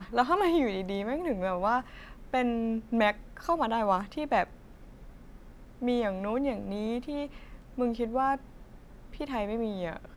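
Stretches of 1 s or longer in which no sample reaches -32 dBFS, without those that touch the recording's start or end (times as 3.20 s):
4.44–5.82 s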